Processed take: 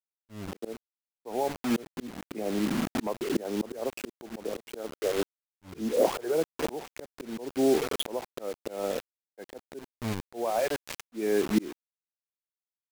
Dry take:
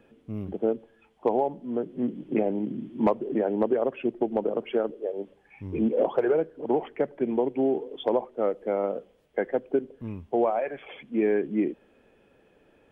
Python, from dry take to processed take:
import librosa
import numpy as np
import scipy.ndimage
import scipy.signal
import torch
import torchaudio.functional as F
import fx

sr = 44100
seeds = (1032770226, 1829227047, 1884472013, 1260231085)

y = fx.quant_dither(x, sr, seeds[0], bits=6, dither='none')
y = fx.auto_swell(y, sr, attack_ms=585.0)
y = y * 10.0 ** (7.0 / 20.0)